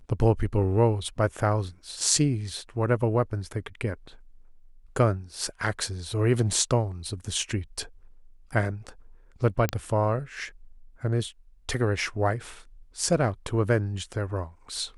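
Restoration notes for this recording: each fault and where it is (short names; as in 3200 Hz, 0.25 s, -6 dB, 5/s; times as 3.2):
9.69 pop -10 dBFS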